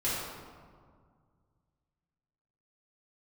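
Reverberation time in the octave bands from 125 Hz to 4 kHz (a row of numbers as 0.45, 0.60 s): 3.0, 2.4, 1.9, 1.9, 1.3, 0.95 s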